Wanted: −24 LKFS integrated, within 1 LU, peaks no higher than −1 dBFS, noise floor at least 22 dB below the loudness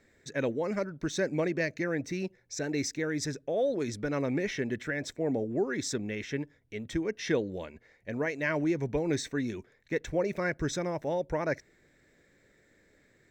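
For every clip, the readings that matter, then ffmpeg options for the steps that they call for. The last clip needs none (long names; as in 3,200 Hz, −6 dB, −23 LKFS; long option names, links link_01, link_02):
integrated loudness −32.5 LKFS; sample peak −17.0 dBFS; target loudness −24.0 LKFS
→ -af "volume=8.5dB"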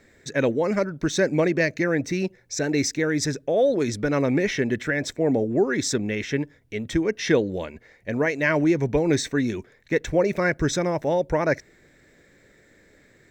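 integrated loudness −24.0 LKFS; sample peak −8.5 dBFS; background noise floor −57 dBFS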